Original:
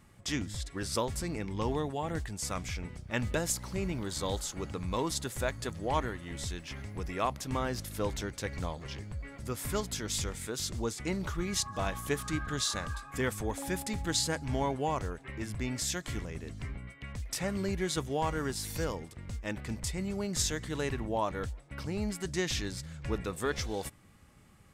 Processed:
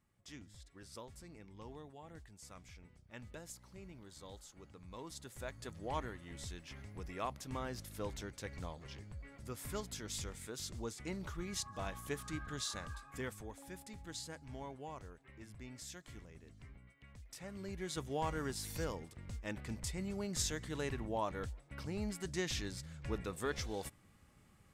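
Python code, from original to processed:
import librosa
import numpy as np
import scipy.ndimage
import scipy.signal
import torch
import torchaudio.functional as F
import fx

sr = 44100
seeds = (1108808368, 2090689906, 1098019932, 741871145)

y = fx.gain(x, sr, db=fx.line((4.78, -19.0), (5.84, -9.0), (13.11, -9.0), (13.58, -16.0), (17.39, -16.0), (18.17, -6.0)))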